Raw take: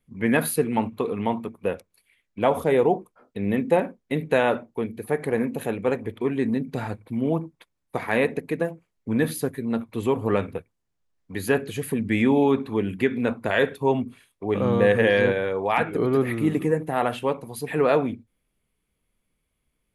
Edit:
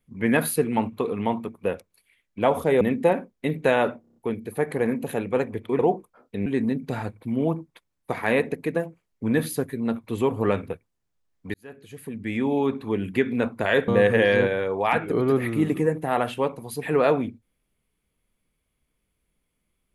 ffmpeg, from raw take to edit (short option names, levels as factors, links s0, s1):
-filter_complex "[0:a]asplit=11[s0][s1][s2][s3][s4][s5][s6][s7][s8][s9][s10];[s0]atrim=end=2.812[s11];[s1]atrim=start=3.478:end=4.712[s12];[s2]atrim=start=4.678:end=4.712[s13];[s3]atrim=start=4.678:end=4.712[s14];[s4]atrim=start=4.678:end=4.712[s15];[s5]atrim=start=4.678:end=4.712[s16];[s6]atrim=start=4.678:end=6.312[s17];[s7]atrim=start=2.808:end=3.482[s18];[s8]atrim=start=6.308:end=11.39,asetpts=PTS-STARTPTS,afade=t=out:st=5.078:d=0.004:c=hsin[s19];[s9]atrim=start=11.39:end=13.732,asetpts=PTS-STARTPTS,afade=t=in:d=1.63[s20];[s10]atrim=start=14.728[s21];[s11][s12]acrossfade=d=0.004:c1=hsin:c2=hsin[s22];[s22][s13]acrossfade=d=0.004:c1=hsin:c2=hsin[s23];[s23][s14]acrossfade=d=0.004:c1=hsin:c2=hsin[s24];[s24][s15]acrossfade=d=0.004:c1=hsin:c2=hsin[s25];[s25][s16]acrossfade=d=0.004:c1=hsin:c2=hsin[s26];[s26][s17]acrossfade=d=0.004:c1=hsin:c2=hsin[s27];[s27][s18]acrossfade=d=0.004:c1=hsin:c2=hsin[s28];[s19][s20]concat=n=2:v=0:a=1[s29];[s28][s29]acrossfade=d=0.004:c1=hsin:c2=hsin[s30];[s30][s21]acrossfade=d=0.004:c1=hsin:c2=hsin"